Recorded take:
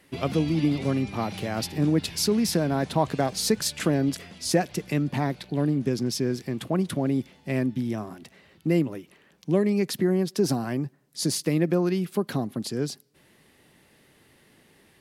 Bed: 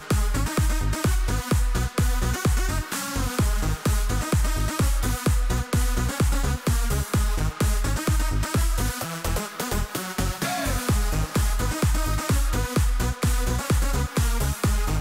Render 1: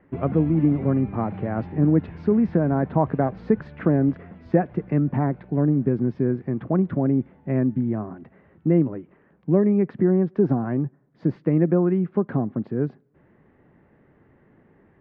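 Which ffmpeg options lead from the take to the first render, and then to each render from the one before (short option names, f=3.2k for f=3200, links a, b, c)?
-af "lowpass=f=1.7k:w=0.5412,lowpass=f=1.7k:w=1.3066,lowshelf=f=470:g=5.5"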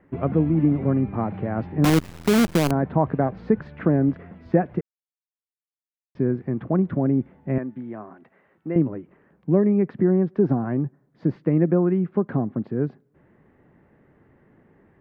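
-filter_complex "[0:a]asettb=1/sr,asplit=3[a][b][c];[a]atrim=end=1.844[d];[b]atrim=start=1.84:end=2.71,asetpts=PTS-STARTPTS,afade=t=in:d=0.004:c=qsin,afade=t=out:st=0.866:d=0.004:c=qsin,acrusher=bits=4:dc=4:mix=0:aa=0.000001[e];[c]atrim=start=2.706[f];[d][e]acrossfade=d=0.004:c1=hsin:c2=qsin[g];[g][f]acrossfade=d=0.004:c1=qsin:c2=hsin,asettb=1/sr,asplit=3[h][i][j];[h]atrim=end=7.584[k];[i]atrim=start=7.58:end=8.76,asetpts=PTS-STARTPTS,afade=t=in:d=0.004:c=qsin,afade=t=out:st=1.176:d=0.004:c=qsin,highpass=f=740:p=1[l];[j]atrim=start=8.756[m];[k][l]acrossfade=d=0.004:c1=hsin:c2=qsin[n];[n][m]acrossfade=d=0.004:c1=qsin:c2=hsin,asplit=3[o][p][q];[o]atrim=end=4.81,asetpts=PTS-STARTPTS,afade=t=out:st=4.806:d=0.004:c=hsin[r];[p]atrim=start=4.81:end=6.15,asetpts=PTS-STARTPTS,volume=0[s];[q]atrim=start=6.15,asetpts=PTS-STARTPTS,afade=t=in:d=0.004:c=hsin[t];[r][s][t]concat=n=3:v=0:a=1"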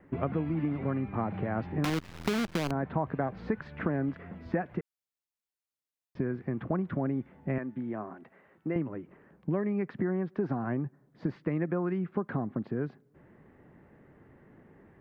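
-filter_complex "[0:a]acrossover=split=930|5900[a][b][c];[a]acompressor=threshold=-30dB:ratio=4[d];[b]acompressor=threshold=-35dB:ratio=4[e];[c]acompressor=threshold=-52dB:ratio=4[f];[d][e][f]amix=inputs=3:normalize=0"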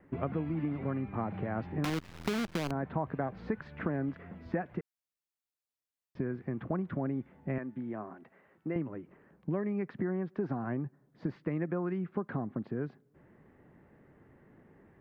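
-af "volume=-3dB"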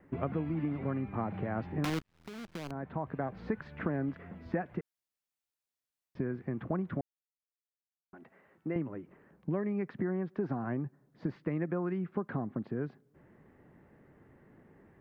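-filter_complex "[0:a]asplit=4[a][b][c][d];[a]atrim=end=2.02,asetpts=PTS-STARTPTS,afade=t=out:st=2.016:d=0.004:c=hsin[e];[b]atrim=start=2.02:end=7.01,asetpts=PTS-STARTPTS,afade=t=in:d=1.4,afade=t=out:st=4.986:d=0.004:c=hsin[f];[c]atrim=start=7.01:end=8.13,asetpts=PTS-STARTPTS,volume=0[g];[d]atrim=start=8.13,asetpts=PTS-STARTPTS,afade=t=in:d=0.004:c=hsin[h];[e][f][g][h]concat=n=4:v=0:a=1"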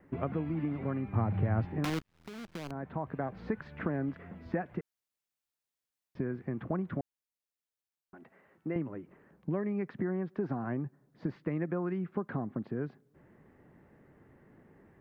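-filter_complex "[0:a]asettb=1/sr,asplit=3[a][b][c];[a]atrim=end=1.124[d];[b]atrim=start=1.12:end=1.65,asetpts=PTS-STARTPTS,afade=t=in:d=0.004:c=qsin,afade=t=out:st=0.526:d=0.004:c=qsin,equalizer=f=94:t=o:w=1:g=13.5[e];[c]atrim=start=1.646[f];[d][e]acrossfade=d=0.004:c1=hsin:c2=qsin[g];[g][f]acrossfade=d=0.004:c1=qsin:c2=hsin"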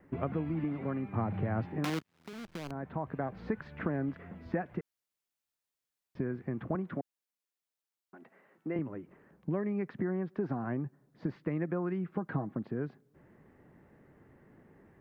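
-filter_complex "[0:a]asettb=1/sr,asplit=3[a][b][c];[a]atrim=end=0.644[d];[b]atrim=start=0.64:end=2.33,asetpts=PTS-STARTPTS,afade=t=in:d=0.004:c=qsin,afade=t=out:st=1.686:d=0.004:c=qsin,highpass=130[e];[c]atrim=start=2.326[f];[d][e]acrossfade=d=0.004:c1=hsin:c2=qsin[g];[g][f]acrossfade=d=0.004:c1=qsin:c2=hsin,asettb=1/sr,asplit=3[h][i][j];[h]atrim=end=6.754[k];[i]atrim=start=6.75:end=8.79,asetpts=PTS-STARTPTS,afade=t=in:d=0.004:c=qsin,afade=t=out:st=2.036:d=0.004:c=qsin,highpass=170[l];[j]atrim=start=8.786[m];[k][l]acrossfade=d=0.004:c1=hsin:c2=qsin[n];[n][m]acrossfade=d=0.004:c1=qsin:c2=hsin,asettb=1/sr,asplit=3[o][p][q];[o]atrim=end=12.094[r];[p]atrim=start=12.09:end=12.54,asetpts=PTS-STARTPTS,afade=t=in:d=0.004:c=qsin,afade=t=out:st=0.446:d=0.004:c=qsin,aecho=1:1:6.3:0.49,atrim=end_sample=19845[s];[q]atrim=start=12.536[t];[r][s]acrossfade=d=0.004:c1=hsin:c2=qsin[u];[u][t]acrossfade=d=0.004:c1=qsin:c2=hsin"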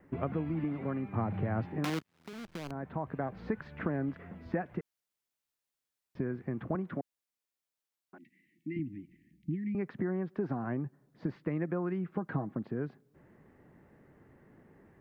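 -filter_complex "[0:a]asettb=1/sr,asplit=3[a][b][c];[a]atrim=end=8.184[d];[b]atrim=start=8.18:end=9.75,asetpts=PTS-STARTPTS,afade=t=in:d=0.004:c=qsin,afade=t=out:st=1.566:d=0.004:c=qsin,asuperstop=centerf=810:order=20:qfactor=0.51[e];[c]atrim=start=9.746[f];[d][e]acrossfade=d=0.004:c1=hsin:c2=qsin[g];[g][f]acrossfade=d=0.004:c1=qsin:c2=hsin"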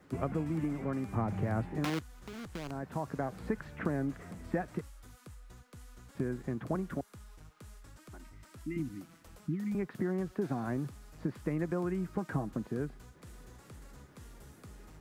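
-filter_complex "[1:a]volume=-29.5dB[a];[0:a][a]amix=inputs=2:normalize=0"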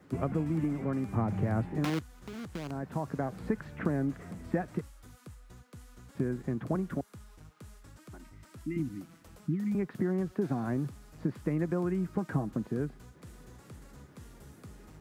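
-af "highpass=f=110:p=1,lowshelf=f=290:g=7"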